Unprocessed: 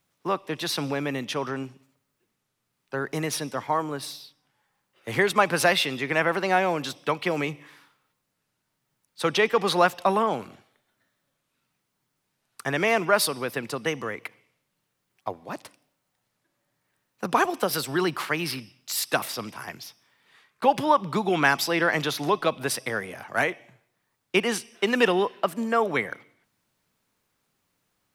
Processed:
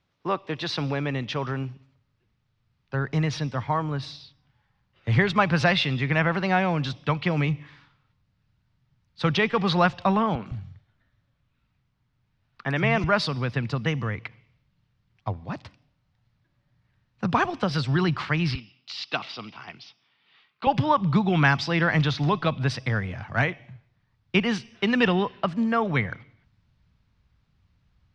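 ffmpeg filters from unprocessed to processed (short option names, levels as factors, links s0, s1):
-filter_complex "[0:a]asettb=1/sr,asplit=3[s0][s1][s2];[s0]atrim=end=10.354[s3];[s1]atrim=start=10.35:end=13.04,asetpts=PTS-STARTPTS,afade=t=in:d=0.004:c=qsin,afade=t=out:st=2.686:d=0.004:c=qsin,acrossover=split=150|4500[s4][s5][s6];[s6]adelay=110[s7];[s4]adelay=160[s8];[s8][s5][s7]amix=inputs=3:normalize=0,atrim=end_sample=118629[s9];[s2]atrim=start=13.036[s10];[s3][s9]acrossfade=d=0.004:c1=hsin:c2=qsin[s11];[s11][s10]acrossfade=d=0.004:c1=qsin:c2=hsin,asettb=1/sr,asplit=3[s12][s13][s14];[s12]atrim=end=18.554[s15];[s13]atrim=start=18.55:end=20.67,asetpts=PTS-STARTPTS,afade=t=in:d=0.004:c=qsin,afade=t=out:st=2.116:d=0.004:c=qsin,highpass=360,equalizer=f=550:t=q:w=4:g=-7,equalizer=f=980:t=q:w=4:g=-4,equalizer=f=1700:t=q:w=4:g=-8,equalizer=f=2900:t=q:w=4:g=4,lowpass=f=5200:w=0.5412,lowpass=f=5200:w=1.3066[s16];[s14]atrim=start=20.666[s17];[s15][s16]acrossfade=d=0.004:c1=hsin:c2=qsin[s18];[s18][s17]acrossfade=d=0.004:c1=qsin:c2=hsin,asubboost=boost=7:cutoff=140,lowpass=f=4900:w=0.5412,lowpass=f=4900:w=1.3066,equalizer=f=63:w=0.88:g=10.5"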